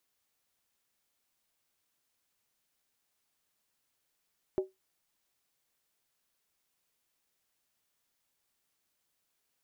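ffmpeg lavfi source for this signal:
-f lavfi -i "aevalsrc='0.075*pow(10,-3*t/0.18)*sin(2*PI*379*t)+0.0211*pow(10,-3*t/0.143)*sin(2*PI*604.1*t)+0.00596*pow(10,-3*t/0.123)*sin(2*PI*809.5*t)+0.00168*pow(10,-3*t/0.119)*sin(2*PI*870.2*t)+0.000473*pow(10,-3*t/0.111)*sin(2*PI*1005.5*t)':d=0.63:s=44100"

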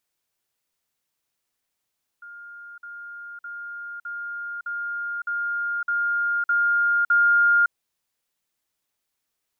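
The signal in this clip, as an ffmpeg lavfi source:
-f lavfi -i "aevalsrc='pow(10,(-38.5+3*floor(t/0.61))/20)*sin(2*PI*1410*t)*clip(min(mod(t,0.61),0.56-mod(t,0.61))/0.005,0,1)':d=5.49:s=44100"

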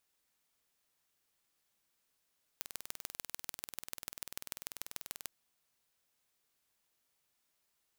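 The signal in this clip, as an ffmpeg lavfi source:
-f lavfi -i "aevalsrc='0.282*eq(mod(n,2162),0)*(0.5+0.5*eq(mod(n,6486),0))':d=2.68:s=44100"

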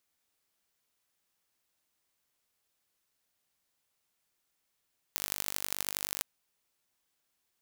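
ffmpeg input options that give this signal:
-f lavfi -i "aevalsrc='0.668*eq(mod(n,891),0)*(0.5+0.5*eq(mod(n,3564),0))':d=1.06:s=44100"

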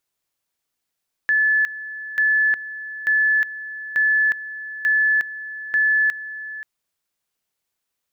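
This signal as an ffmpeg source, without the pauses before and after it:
-f lavfi -i "aevalsrc='pow(10,(-14.5-15*gte(mod(t,0.89),0.36))/20)*sin(2*PI*1730*t)':d=5.34:s=44100"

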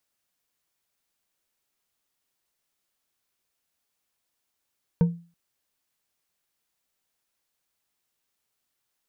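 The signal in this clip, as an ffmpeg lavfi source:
-f lavfi -i "aevalsrc='0.224*pow(10,-3*t/0.36)*sin(2*PI*170*t)+0.0668*pow(10,-3*t/0.177)*sin(2*PI*468.7*t)+0.02*pow(10,-3*t/0.111)*sin(2*PI*918.7*t)+0.00596*pow(10,-3*t/0.078)*sin(2*PI*1518.6*t)+0.00178*pow(10,-3*t/0.059)*sin(2*PI*2267.8*t)':d=0.33:s=44100"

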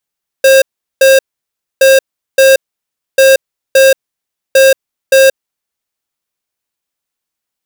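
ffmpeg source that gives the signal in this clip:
-f lavfi -i "aevalsrc='0.562*(2*lt(mod(535*t,1),0.5)-1)*clip(min(mod(mod(t,1.37),0.57),0.18-mod(mod(t,1.37),0.57))/0.005,0,1)*lt(mod(t,1.37),1.14)':d=5.48:s=44100"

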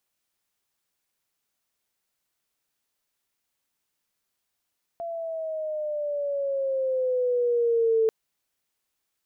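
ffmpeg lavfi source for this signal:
-f lavfi -i "aevalsrc='pow(10,(-18+12*(t/3.09-1))/20)*sin(2*PI*681*3.09/(-7.5*log(2)/12)*(exp(-7.5*log(2)/12*t/3.09)-1))':d=3.09:s=44100"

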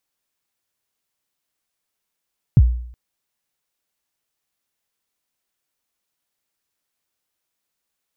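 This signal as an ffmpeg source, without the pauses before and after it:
-f lavfi -i "aevalsrc='0.596*pow(10,-3*t/0.63)*sin(2*PI*(160*0.045/log(60/160)*(exp(log(60/160)*min(t,0.045)/0.045)-1)+60*max(t-0.045,0)))':d=0.37:s=44100"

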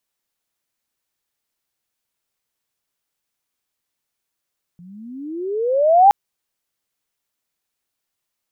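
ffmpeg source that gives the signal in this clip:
-f lavfi -i "aevalsrc='pow(10,(-5.5+33.5*(t/1.32-1))/20)*sin(2*PI*169*1.32/(27.5*log(2)/12)*(exp(27.5*log(2)/12*t/1.32)-1))':d=1.32:s=44100"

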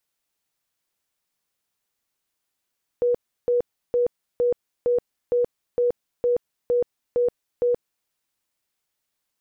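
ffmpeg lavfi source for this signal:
-f lavfi -i "aevalsrc='0.141*sin(2*PI*485*mod(t,0.46))*lt(mod(t,0.46),61/485)':d=5.06:s=44100"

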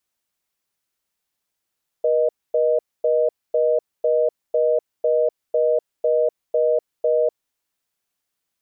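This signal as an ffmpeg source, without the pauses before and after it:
-f lavfi -i "aevalsrc='0.126*(sin(2*PI*480*t)+sin(2*PI*620*t))*clip(min(mod(t,0.5),0.25-mod(t,0.5))/0.005,0,1)':d=5.36:s=44100"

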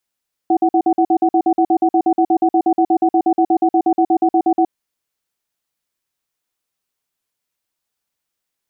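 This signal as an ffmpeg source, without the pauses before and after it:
-f lavfi -i "aevalsrc='0.224*(sin(2*PI*332*t)+sin(2*PI*746*t))*clip(min(mod(t,0.12),0.07-mod(t,0.12))/0.005,0,1)':d=4.18:s=44100"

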